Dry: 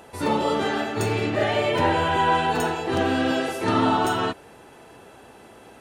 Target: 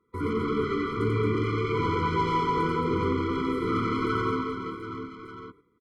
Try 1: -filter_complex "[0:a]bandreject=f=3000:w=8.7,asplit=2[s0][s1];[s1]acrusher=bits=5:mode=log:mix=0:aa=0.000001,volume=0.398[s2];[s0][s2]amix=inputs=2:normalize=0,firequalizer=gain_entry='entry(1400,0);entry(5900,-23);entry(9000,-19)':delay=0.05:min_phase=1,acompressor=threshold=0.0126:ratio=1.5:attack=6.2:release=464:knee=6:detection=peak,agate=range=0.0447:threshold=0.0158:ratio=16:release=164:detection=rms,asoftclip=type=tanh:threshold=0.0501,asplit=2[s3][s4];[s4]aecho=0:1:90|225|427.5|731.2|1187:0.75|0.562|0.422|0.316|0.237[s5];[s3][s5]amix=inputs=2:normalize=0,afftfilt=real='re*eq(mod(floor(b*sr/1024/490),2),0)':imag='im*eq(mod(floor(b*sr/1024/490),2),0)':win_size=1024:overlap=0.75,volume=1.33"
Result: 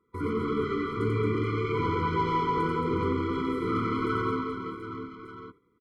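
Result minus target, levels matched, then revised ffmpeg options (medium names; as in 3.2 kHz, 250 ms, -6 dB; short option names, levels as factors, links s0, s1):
compression: peak gain reduction +3 dB
-filter_complex "[0:a]bandreject=f=3000:w=8.7,asplit=2[s0][s1];[s1]acrusher=bits=5:mode=log:mix=0:aa=0.000001,volume=0.398[s2];[s0][s2]amix=inputs=2:normalize=0,firequalizer=gain_entry='entry(1400,0);entry(5900,-23);entry(9000,-19)':delay=0.05:min_phase=1,acompressor=threshold=0.0335:ratio=1.5:attack=6.2:release=464:knee=6:detection=peak,agate=range=0.0447:threshold=0.0158:ratio=16:release=164:detection=rms,asoftclip=type=tanh:threshold=0.0501,asplit=2[s3][s4];[s4]aecho=0:1:90|225|427.5|731.2|1187:0.75|0.562|0.422|0.316|0.237[s5];[s3][s5]amix=inputs=2:normalize=0,afftfilt=real='re*eq(mod(floor(b*sr/1024/490),2),0)':imag='im*eq(mod(floor(b*sr/1024/490),2),0)':win_size=1024:overlap=0.75,volume=1.33"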